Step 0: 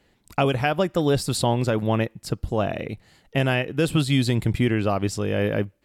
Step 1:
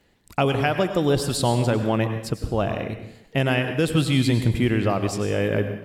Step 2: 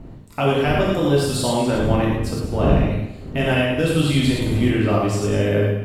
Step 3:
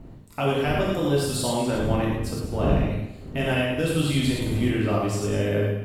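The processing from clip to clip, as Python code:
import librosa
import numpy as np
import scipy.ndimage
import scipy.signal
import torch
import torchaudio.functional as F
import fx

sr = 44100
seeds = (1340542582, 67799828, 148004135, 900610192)

y1 = fx.dmg_crackle(x, sr, seeds[0], per_s=31.0, level_db=-53.0)
y1 = fx.rev_plate(y1, sr, seeds[1], rt60_s=0.74, hf_ratio=1.0, predelay_ms=85, drr_db=7.5)
y2 = fx.dmg_wind(y1, sr, seeds[2], corner_hz=190.0, level_db=-28.0)
y2 = fx.rev_gated(y2, sr, seeds[3], gate_ms=140, shape='flat', drr_db=-4.5)
y2 = F.gain(torch.from_numpy(y2), -3.5).numpy()
y3 = fx.high_shelf(y2, sr, hz=8700.0, db=6.0)
y3 = F.gain(torch.from_numpy(y3), -5.0).numpy()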